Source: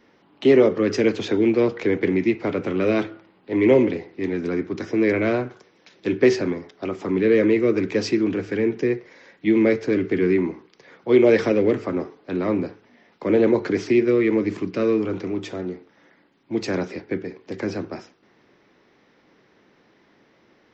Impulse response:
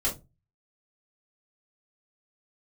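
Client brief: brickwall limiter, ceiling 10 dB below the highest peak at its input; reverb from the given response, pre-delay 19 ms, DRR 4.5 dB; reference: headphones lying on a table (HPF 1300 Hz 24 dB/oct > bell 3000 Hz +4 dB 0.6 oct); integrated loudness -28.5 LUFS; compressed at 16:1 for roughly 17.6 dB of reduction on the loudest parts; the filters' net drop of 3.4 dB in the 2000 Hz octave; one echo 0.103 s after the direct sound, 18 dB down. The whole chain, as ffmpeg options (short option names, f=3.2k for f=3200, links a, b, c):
-filter_complex "[0:a]equalizer=f=2k:t=o:g=-5,acompressor=threshold=-28dB:ratio=16,alimiter=level_in=4dB:limit=-24dB:level=0:latency=1,volume=-4dB,aecho=1:1:103:0.126,asplit=2[a][b];[1:a]atrim=start_sample=2205,adelay=19[c];[b][c]afir=irnorm=-1:irlink=0,volume=-12dB[d];[a][d]amix=inputs=2:normalize=0,highpass=f=1.3k:w=0.5412,highpass=f=1.3k:w=1.3066,equalizer=f=3k:t=o:w=0.6:g=4,volume=20dB"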